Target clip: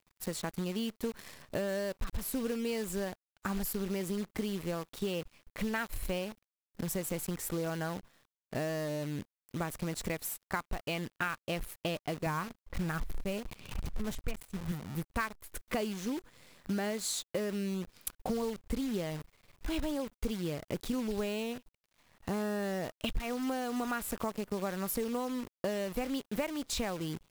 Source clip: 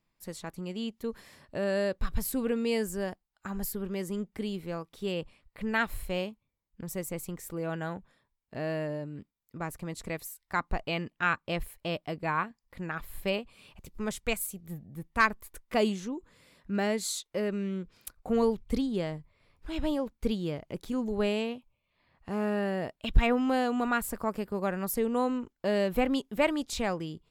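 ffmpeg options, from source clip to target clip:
-filter_complex "[0:a]asettb=1/sr,asplit=3[a][b][c];[a]atrim=end=12.264[d];[b]atrim=start=12.26:end=14.72,asetpts=PTS-STARTPTS,afade=t=in:d=0.004:c=qsin,afade=t=out:st=2.456:d=0.004:c=qsin,aemphasis=mode=reproduction:type=bsi[e];[c]atrim=start=14.716[f];[d][e]acrossfade=d=0.004:c1=hsin:c2=qsin[g];[g][f]acrossfade=d=0.004:c1=qsin:c2=hsin,acompressor=threshold=-37dB:ratio=10,acrusher=bits=9:dc=4:mix=0:aa=0.000001,volume=6dB"

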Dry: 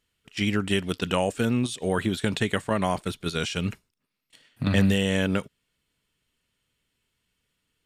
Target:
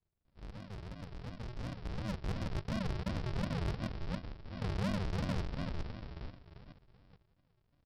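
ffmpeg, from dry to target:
-filter_complex "[0:a]lowpass=f=2.1k:p=1,bandreject=f=60:t=h:w=6,bandreject=f=120:t=h:w=6,areverse,acompressor=threshold=-34dB:ratio=6,areverse,asplit=5[a][b][c][d][e];[b]adelay=437,afreqshift=72,volume=-4dB[f];[c]adelay=874,afreqshift=144,volume=-13.1dB[g];[d]adelay=1311,afreqshift=216,volume=-22.2dB[h];[e]adelay=1748,afreqshift=288,volume=-31.4dB[i];[a][f][g][h][i]amix=inputs=5:normalize=0,aresample=11025,acrusher=samples=35:mix=1:aa=0.000001:lfo=1:lforange=21:lforate=2.8,aresample=44100,asoftclip=type=tanh:threshold=-34.5dB,dynaudnorm=f=550:g=7:m=11.5dB,volume=-6.5dB"

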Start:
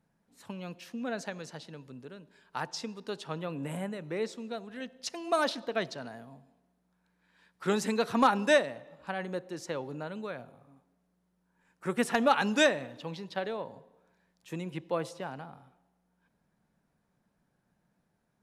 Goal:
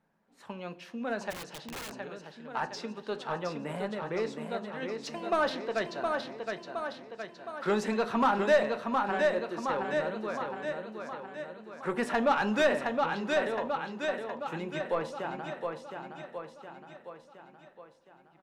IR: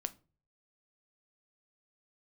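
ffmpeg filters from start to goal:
-filter_complex "[0:a]aecho=1:1:716|1432|2148|2864|3580|4296|5012:0.501|0.266|0.141|0.0746|0.0395|0.021|0.0111,asplit=2[a][b];[b]highpass=f=720:p=1,volume=16dB,asoftclip=type=tanh:threshold=-12.5dB[c];[a][c]amix=inputs=2:normalize=0,lowpass=f=1.4k:p=1,volume=-6dB[d];[1:a]atrim=start_sample=2205,asetrate=57330,aresample=44100[e];[d][e]afir=irnorm=-1:irlink=0,asplit=3[f][g][h];[f]afade=t=out:st=1.3:d=0.02[i];[g]aeval=exprs='(mod(56.2*val(0)+1,2)-1)/56.2':c=same,afade=t=in:st=1.3:d=0.02,afade=t=out:st=1.92:d=0.02[j];[h]afade=t=in:st=1.92:d=0.02[k];[i][j][k]amix=inputs=3:normalize=0"

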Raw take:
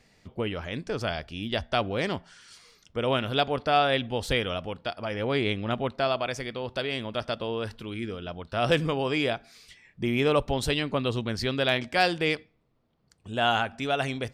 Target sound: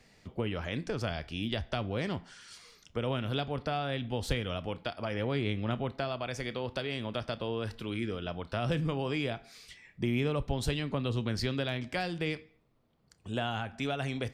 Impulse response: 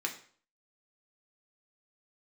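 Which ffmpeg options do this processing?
-filter_complex "[0:a]acrossover=split=220[a][b];[b]acompressor=threshold=-32dB:ratio=6[c];[a][c]amix=inputs=2:normalize=0,asplit=2[d][e];[1:a]atrim=start_sample=2205,adelay=29[f];[e][f]afir=irnorm=-1:irlink=0,volume=-18.5dB[g];[d][g]amix=inputs=2:normalize=0"

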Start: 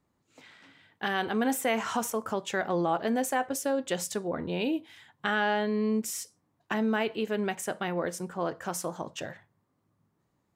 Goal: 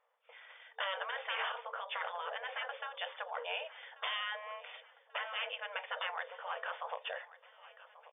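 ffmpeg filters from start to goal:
-filter_complex "[0:a]atempo=1.3,tremolo=f=1.5:d=0.48,afftfilt=real='re*lt(hypot(re,im),0.0631)':imag='im*lt(hypot(re,im),0.0631)':win_size=1024:overlap=0.75,asplit=2[a][b];[b]aeval=exprs='(mod(35.5*val(0)+1,2)-1)/35.5':c=same,volume=-9.5dB[c];[a][c]amix=inputs=2:normalize=0,afftfilt=real='re*between(b*sr/4096,450,3600)':imag='im*between(b*sr/4096,450,3600)':win_size=4096:overlap=0.75,asplit=2[d][e];[e]aecho=0:1:1138|2276|3414|4552:0.126|0.0629|0.0315|0.0157[f];[d][f]amix=inputs=2:normalize=0,volume=2dB"

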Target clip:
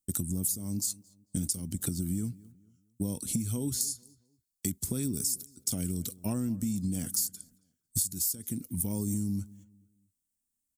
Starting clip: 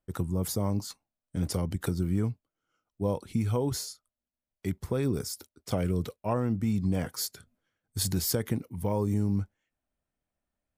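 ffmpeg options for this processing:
-filter_complex "[0:a]asettb=1/sr,asplit=3[a][b][c];[a]atrim=end=1.584[d];[b]atrim=start=1.58:end=3.81,asetpts=PTS-STARTPTS,afade=t=in:d=0.004:c=qsin,afade=t=out:st=2.226:d=0.004:c=qsin,acrossover=split=3600[e][f];[f]acompressor=threshold=-49dB:ratio=4:attack=1:release=60[g];[e][g]amix=inputs=2:normalize=0[h];[c]atrim=start=3.806[i];[d][h]acrossfade=d=0.004:c1=hsin:c2=qsin[j];[j][i]acrossfade=d=0.004:c1=qsin:c2=hsin,aemphasis=mode=production:type=75fm,agate=range=-14dB:threshold=-56dB:ratio=16:detection=peak,equalizer=f=250:t=o:w=1:g=9,equalizer=f=500:t=o:w=1:g=-9,equalizer=f=1k:t=o:w=1:g=-10,equalizer=f=2k:t=o:w=1:g=-6,equalizer=f=8k:t=o:w=1:g=11,acompressor=threshold=-32dB:ratio=12,asplit=2[k][l];[l]adelay=223,lowpass=f=2.4k:p=1,volume=-21dB,asplit=2[m][n];[n]adelay=223,lowpass=f=2.4k:p=1,volume=0.36,asplit=2[o][p];[p]adelay=223,lowpass=f=2.4k:p=1,volume=0.36[q];[k][m][o][q]amix=inputs=4:normalize=0,volume=4dB"

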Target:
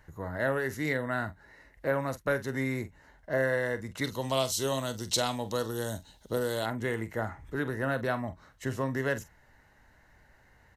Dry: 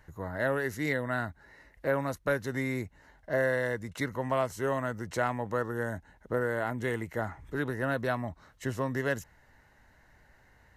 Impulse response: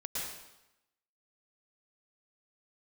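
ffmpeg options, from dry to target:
-filter_complex "[0:a]asettb=1/sr,asplit=3[a][b][c];[a]atrim=end=4.044[d];[b]atrim=start=4.04:end=6.66,asetpts=PTS-STARTPTS,afade=t=in:d=0.004:c=qsin,afade=t=out:st=2.616:d=0.004:c=qsin,highshelf=f=2.6k:t=q:w=3:g=12.5[e];[c]atrim=start=6.656[f];[d][e]acrossfade=d=0.004:c1=hsin:c2=qsin[g];[g][f]acrossfade=d=0.004:c1=qsin:c2=hsin,asplit=2[h][i];[i]adelay=45,volume=-13dB[j];[h][j]amix=inputs=2:normalize=0"

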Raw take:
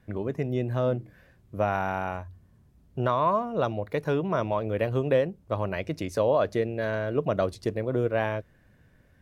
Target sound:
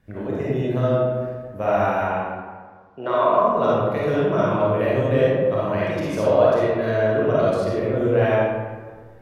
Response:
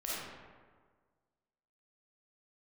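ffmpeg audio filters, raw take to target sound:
-filter_complex "[0:a]asettb=1/sr,asplit=3[a][b][c];[a]atrim=end=2.024[d];[b]atrim=start=2.02:end=3.38,asetpts=PTS-STARTPTS,afade=t=in:d=0.004:c=qsin,afade=t=out:st=1.356:d=0.004:c=qsin,acrossover=split=220 5100:gain=0.0794 1 0.0708[e][f][g];[e][f][g]amix=inputs=3:normalize=0[h];[c]atrim=start=3.376[i];[d][h]acrossfade=d=0.004:c1=hsin:c2=qsin[j];[j][i]acrossfade=d=0.004:c1=qsin:c2=hsin[k];[1:a]atrim=start_sample=2205[l];[k][l]afir=irnorm=-1:irlink=0,volume=3dB"

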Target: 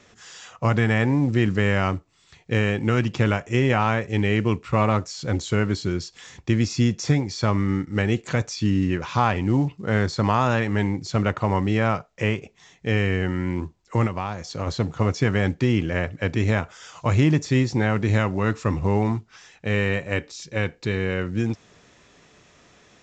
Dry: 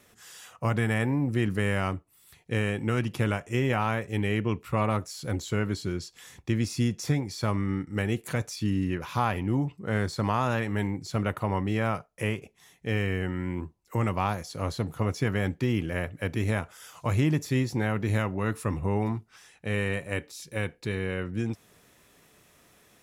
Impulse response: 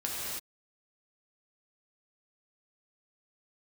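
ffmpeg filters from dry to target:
-filter_complex "[0:a]asplit=3[a][b][c];[a]afade=t=out:st=14.06:d=0.02[d];[b]acompressor=threshold=-30dB:ratio=6,afade=t=in:st=14.06:d=0.02,afade=t=out:st=14.66:d=0.02[e];[c]afade=t=in:st=14.66:d=0.02[f];[d][e][f]amix=inputs=3:normalize=0,volume=6dB" -ar 16000 -c:a pcm_mulaw

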